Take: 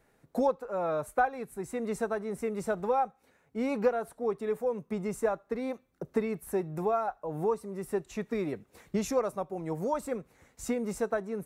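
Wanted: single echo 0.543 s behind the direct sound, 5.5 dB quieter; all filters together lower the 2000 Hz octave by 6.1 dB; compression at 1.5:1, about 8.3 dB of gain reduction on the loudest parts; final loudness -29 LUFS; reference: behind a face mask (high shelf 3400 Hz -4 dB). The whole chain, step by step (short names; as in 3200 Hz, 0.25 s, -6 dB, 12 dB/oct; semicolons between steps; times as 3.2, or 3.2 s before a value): bell 2000 Hz -8 dB; compressor 1.5:1, threshold -46 dBFS; high shelf 3400 Hz -4 dB; echo 0.543 s -5.5 dB; gain +10 dB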